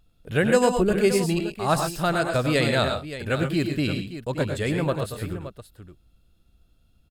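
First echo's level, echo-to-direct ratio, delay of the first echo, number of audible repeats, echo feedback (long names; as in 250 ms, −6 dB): −9.0 dB, −4.0 dB, 97 ms, 3, repeats not evenly spaced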